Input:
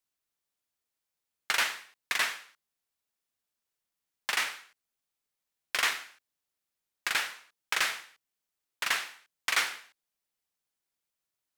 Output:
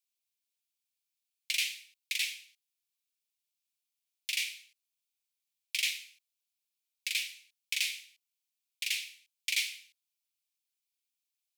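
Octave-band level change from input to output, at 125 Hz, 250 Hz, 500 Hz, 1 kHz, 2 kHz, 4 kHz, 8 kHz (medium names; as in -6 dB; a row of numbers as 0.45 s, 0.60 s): no reading, under -40 dB, under -40 dB, under -40 dB, -6.0 dB, -0.5 dB, -1.0 dB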